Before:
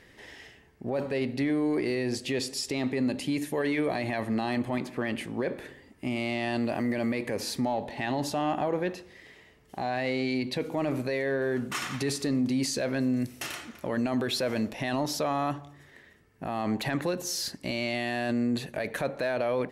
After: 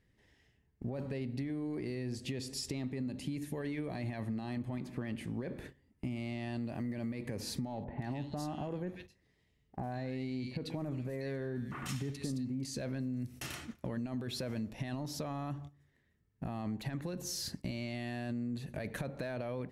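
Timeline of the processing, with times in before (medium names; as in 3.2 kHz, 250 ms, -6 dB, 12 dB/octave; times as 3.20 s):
7.84–12.65 s: bands offset in time lows, highs 140 ms, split 2 kHz
whole clip: gate -43 dBFS, range -16 dB; tone controls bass +14 dB, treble +2 dB; compression, threshold -28 dBFS; trim -7 dB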